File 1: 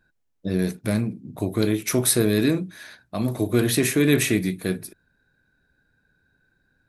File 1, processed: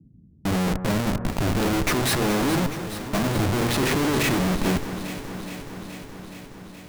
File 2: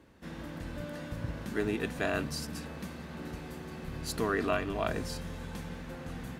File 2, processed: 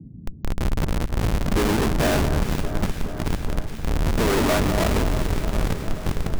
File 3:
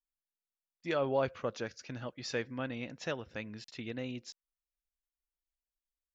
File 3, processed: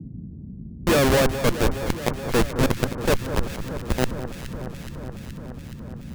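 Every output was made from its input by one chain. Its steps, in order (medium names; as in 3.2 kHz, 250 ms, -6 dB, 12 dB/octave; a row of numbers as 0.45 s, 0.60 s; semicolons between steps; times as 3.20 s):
low-pass 2.2 kHz 6 dB/octave; Schmitt trigger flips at -34 dBFS; reverse; upward compressor, threshold -32 dBFS; reverse; band noise 42–230 Hz -56 dBFS; hum notches 60/120 Hz; on a send: echo whose repeats swap between lows and highs 211 ms, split 1.6 kHz, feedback 85%, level -10 dB; on the sum: normalise loudness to -24 LUFS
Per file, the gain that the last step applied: +3.0 dB, +14.5 dB, +18.5 dB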